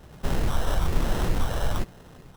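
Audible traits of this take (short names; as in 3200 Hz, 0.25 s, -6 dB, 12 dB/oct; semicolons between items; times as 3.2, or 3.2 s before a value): phasing stages 6, 1.1 Hz, lowest notch 240–4000 Hz; aliases and images of a low sample rate 2300 Hz, jitter 0%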